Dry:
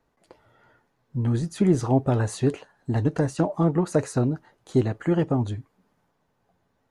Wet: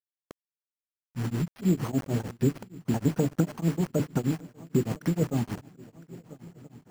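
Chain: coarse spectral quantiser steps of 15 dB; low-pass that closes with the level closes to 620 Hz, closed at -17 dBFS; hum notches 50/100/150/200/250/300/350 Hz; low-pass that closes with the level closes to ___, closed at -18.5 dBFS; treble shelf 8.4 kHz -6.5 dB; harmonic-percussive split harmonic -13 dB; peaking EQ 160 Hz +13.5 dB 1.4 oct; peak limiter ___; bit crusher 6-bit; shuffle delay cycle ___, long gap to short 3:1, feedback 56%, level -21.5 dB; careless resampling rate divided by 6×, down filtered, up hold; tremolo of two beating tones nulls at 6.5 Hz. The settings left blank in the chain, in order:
1.5 kHz, -13 dBFS, 1346 ms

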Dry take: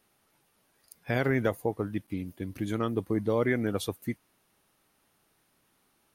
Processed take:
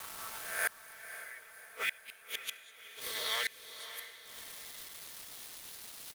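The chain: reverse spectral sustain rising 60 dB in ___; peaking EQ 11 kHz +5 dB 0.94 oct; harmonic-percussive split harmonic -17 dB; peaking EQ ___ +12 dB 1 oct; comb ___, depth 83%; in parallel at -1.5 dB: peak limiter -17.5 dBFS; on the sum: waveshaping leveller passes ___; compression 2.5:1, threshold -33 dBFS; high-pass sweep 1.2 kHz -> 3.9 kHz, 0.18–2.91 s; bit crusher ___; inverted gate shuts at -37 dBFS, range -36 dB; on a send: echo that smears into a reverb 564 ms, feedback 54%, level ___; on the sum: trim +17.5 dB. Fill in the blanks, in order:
1.00 s, 560 Hz, 4.5 ms, 1, 10-bit, -12 dB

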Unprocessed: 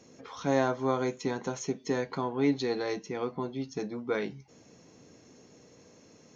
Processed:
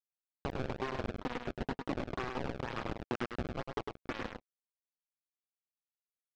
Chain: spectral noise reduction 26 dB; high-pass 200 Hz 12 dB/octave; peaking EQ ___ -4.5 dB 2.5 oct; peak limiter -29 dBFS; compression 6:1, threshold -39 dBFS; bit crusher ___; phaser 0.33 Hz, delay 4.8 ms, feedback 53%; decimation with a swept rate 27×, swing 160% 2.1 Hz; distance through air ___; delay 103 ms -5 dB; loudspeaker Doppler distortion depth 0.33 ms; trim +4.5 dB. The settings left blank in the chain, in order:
890 Hz, 6-bit, 190 m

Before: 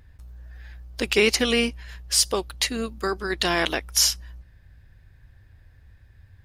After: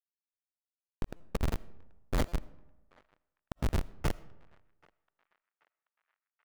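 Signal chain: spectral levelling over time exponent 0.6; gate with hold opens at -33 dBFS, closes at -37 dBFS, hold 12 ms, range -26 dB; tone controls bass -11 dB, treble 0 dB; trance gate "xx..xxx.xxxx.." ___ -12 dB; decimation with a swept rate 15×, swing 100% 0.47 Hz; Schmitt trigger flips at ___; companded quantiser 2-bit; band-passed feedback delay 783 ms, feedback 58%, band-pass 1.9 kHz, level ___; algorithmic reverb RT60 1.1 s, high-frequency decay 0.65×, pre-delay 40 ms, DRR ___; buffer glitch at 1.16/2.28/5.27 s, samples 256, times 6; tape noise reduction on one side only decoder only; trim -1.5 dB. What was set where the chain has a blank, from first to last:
156 bpm, -14 dBFS, -22.5 dB, 19.5 dB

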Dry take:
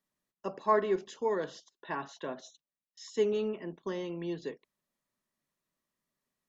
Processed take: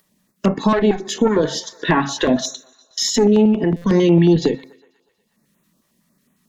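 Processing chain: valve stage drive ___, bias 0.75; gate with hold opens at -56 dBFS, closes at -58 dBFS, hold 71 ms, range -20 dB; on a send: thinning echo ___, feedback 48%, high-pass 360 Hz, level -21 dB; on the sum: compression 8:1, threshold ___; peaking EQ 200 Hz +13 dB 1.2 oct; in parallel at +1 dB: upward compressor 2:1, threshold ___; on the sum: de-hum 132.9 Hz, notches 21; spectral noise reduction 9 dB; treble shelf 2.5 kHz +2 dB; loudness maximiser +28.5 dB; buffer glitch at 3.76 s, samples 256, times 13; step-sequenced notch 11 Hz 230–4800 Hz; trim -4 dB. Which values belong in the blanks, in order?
25 dB, 121 ms, -44 dBFS, -49 dBFS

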